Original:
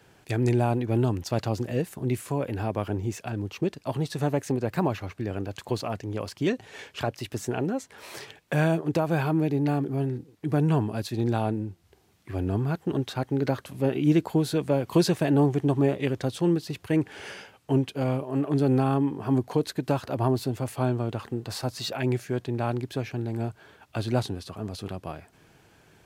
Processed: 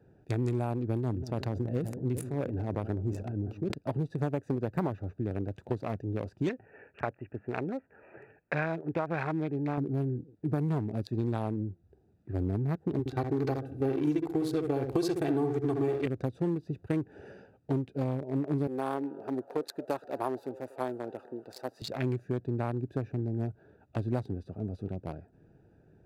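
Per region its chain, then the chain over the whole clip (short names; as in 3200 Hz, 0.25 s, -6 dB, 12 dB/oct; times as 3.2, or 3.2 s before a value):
0.94–3.74 tremolo 6.1 Hz, depth 46% + analogue delay 0.192 s, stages 2048, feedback 55%, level -17 dB + sustainer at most 76 dB/s
6.49–9.78 steep low-pass 2600 Hz 72 dB/oct + tilt shelf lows -7.5 dB, about 750 Hz
12.99–16.06 comb 2.6 ms, depth 77% + darkening echo 67 ms, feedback 37%, low-pass 1700 Hz, level -5 dB
18.67–21.82 HPF 430 Hz + high shelf 12000 Hz +10 dB + frequency-shifting echo 0.236 s, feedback 48%, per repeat +140 Hz, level -16 dB
whole clip: Wiener smoothing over 41 samples; bell 2900 Hz -5 dB 0.36 oct; compressor, threshold -26 dBFS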